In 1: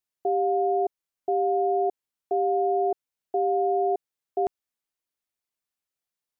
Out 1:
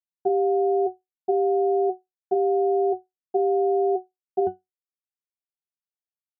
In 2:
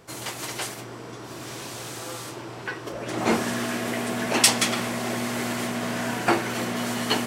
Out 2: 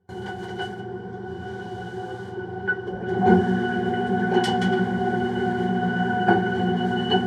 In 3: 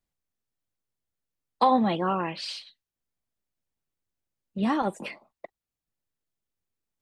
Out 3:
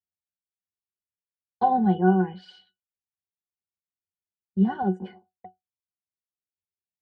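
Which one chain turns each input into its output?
gate with hold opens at -32 dBFS; peaking EQ 3 kHz -6.5 dB 0.39 oct; pitch-class resonator F#, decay 0.16 s; normalise loudness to -24 LUFS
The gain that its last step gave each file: +13.0 dB, +17.5 dB, +13.5 dB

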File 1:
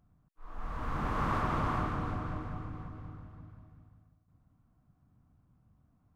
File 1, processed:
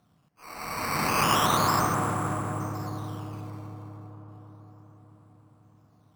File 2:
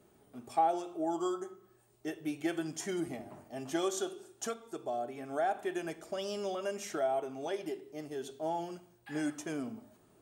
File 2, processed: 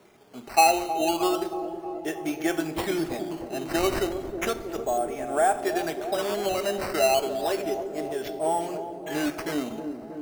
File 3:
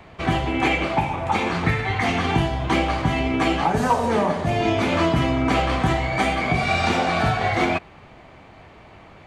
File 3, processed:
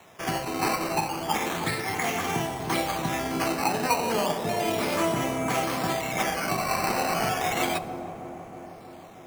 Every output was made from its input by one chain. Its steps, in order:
high-pass 180 Hz 12 dB/octave; peaking EQ 260 Hz -4 dB 1.2 oct; decimation with a swept rate 9×, swing 100% 0.33 Hz; on a send: feedback echo behind a low-pass 315 ms, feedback 70%, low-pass 670 Hz, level -7 dB; on the sum: plate-style reverb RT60 2.3 s, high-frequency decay 0.75×, DRR 16.5 dB; normalise loudness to -27 LUFS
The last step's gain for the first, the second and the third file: +10.5 dB, +10.5 dB, -4.5 dB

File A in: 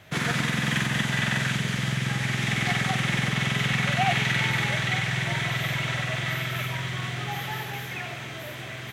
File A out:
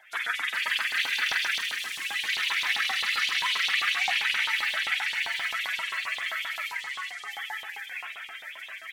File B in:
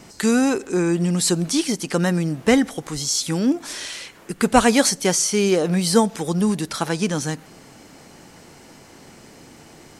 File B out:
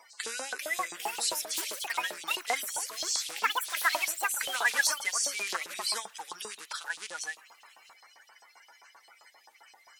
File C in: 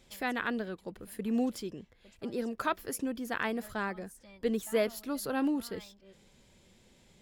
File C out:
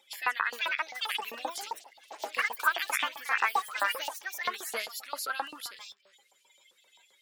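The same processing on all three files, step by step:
coarse spectral quantiser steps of 30 dB; ever faster or slower copies 444 ms, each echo +5 st, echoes 2; LFO high-pass saw up 7.6 Hz 830–4000 Hz; peak normalisation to -12 dBFS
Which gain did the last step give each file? -5.0 dB, -9.5 dB, +3.5 dB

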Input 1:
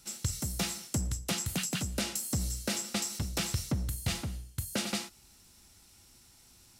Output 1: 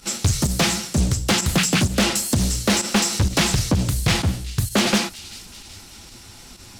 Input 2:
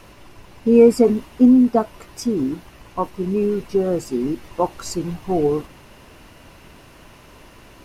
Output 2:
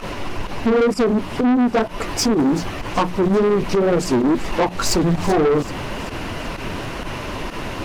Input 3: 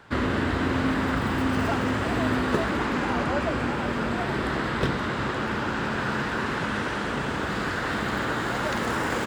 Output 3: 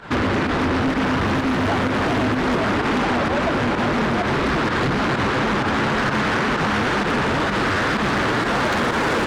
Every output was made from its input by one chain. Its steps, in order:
treble shelf 6.8 kHz -10 dB; hum notches 60/120/180 Hz; compression 4:1, threshold -27 dBFS; flange 2 Hz, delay 3.8 ms, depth 7.3 ms, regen -28%; volume shaper 128 bpm, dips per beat 1, -12 dB, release 61 ms; saturation -35.5 dBFS; feedback echo behind a high-pass 383 ms, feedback 54%, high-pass 3.3 kHz, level -14 dB; loudspeaker Doppler distortion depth 0.42 ms; normalise loudness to -20 LUFS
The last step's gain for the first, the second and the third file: +23.5 dB, +22.5 dB, +19.0 dB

